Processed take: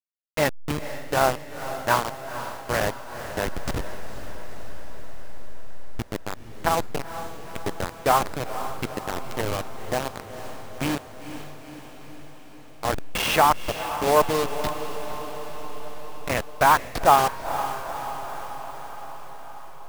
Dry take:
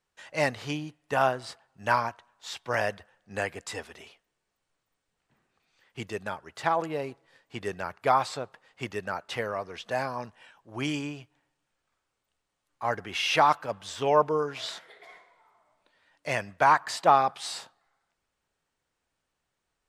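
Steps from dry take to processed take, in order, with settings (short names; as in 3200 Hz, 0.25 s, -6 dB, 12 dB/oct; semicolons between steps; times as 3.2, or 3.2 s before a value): level-crossing sampler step -23.5 dBFS; diffused feedback echo 0.481 s, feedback 66%, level -11 dB; gain +4 dB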